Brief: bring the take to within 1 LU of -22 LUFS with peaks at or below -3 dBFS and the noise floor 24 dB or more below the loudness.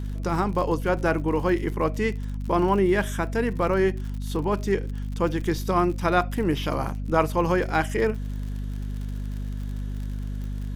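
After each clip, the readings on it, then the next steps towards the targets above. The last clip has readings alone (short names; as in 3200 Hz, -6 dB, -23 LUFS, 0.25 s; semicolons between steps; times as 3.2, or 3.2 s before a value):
ticks 55/s; hum 50 Hz; harmonics up to 250 Hz; hum level -27 dBFS; loudness -26.0 LUFS; peak -7.0 dBFS; loudness target -22.0 LUFS
-> de-click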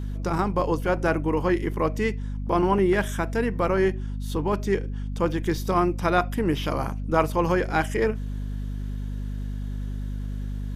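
ticks 0/s; hum 50 Hz; harmonics up to 250 Hz; hum level -28 dBFS
-> notches 50/100/150/200/250 Hz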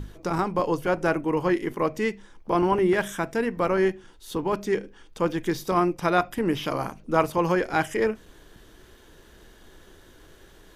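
hum none; loudness -25.5 LUFS; peak -7.5 dBFS; loudness target -22.0 LUFS
-> gain +3.5 dB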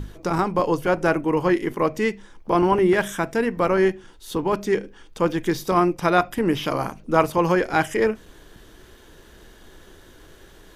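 loudness -22.0 LUFS; peak -4.0 dBFS; noise floor -49 dBFS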